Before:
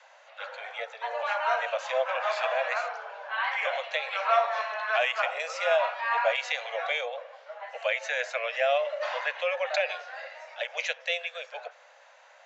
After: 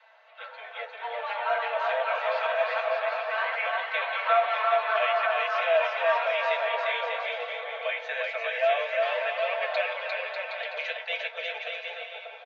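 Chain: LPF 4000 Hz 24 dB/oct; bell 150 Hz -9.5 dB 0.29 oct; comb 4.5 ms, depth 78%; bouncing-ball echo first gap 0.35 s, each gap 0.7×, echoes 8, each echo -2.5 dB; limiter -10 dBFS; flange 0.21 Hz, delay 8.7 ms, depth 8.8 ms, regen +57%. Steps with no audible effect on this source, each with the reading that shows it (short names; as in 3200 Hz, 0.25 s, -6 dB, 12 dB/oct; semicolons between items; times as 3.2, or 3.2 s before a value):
bell 150 Hz: input band starts at 430 Hz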